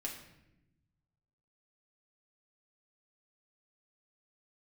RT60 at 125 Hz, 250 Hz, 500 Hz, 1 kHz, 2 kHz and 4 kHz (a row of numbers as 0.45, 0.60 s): 2.0, 1.5, 1.0, 0.75, 0.85, 0.65 s